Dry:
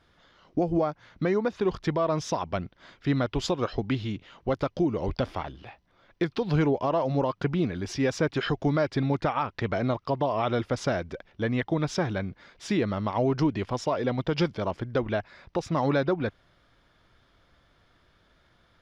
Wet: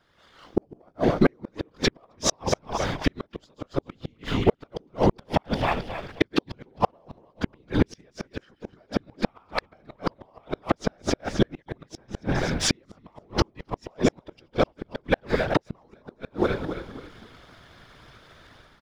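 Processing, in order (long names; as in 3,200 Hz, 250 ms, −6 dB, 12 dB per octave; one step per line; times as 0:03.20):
delay that plays each chunk backwards 185 ms, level −13 dB
low-shelf EQ 270 Hz −3 dB
hum removal 278.5 Hz, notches 3
downward compressor 8 to 1, threshold −30 dBFS, peak gain reduction 9.5 dB
leveller curve on the samples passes 1
automatic gain control gain up to 14 dB
random phases in short frames
on a send: echo with shifted repeats 266 ms, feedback 35%, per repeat −45 Hz, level −9.5 dB
on the sum: gate with flip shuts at −7 dBFS, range −41 dB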